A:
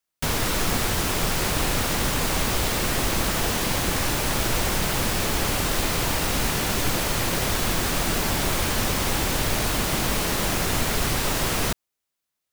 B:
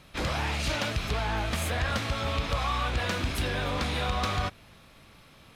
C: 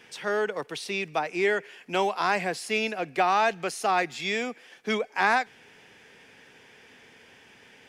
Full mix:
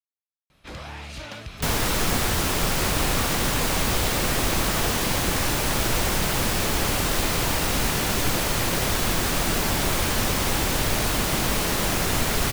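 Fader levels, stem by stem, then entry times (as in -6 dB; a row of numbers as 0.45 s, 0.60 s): +0.5 dB, -7.5 dB, mute; 1.40 s, 0.50 s, mute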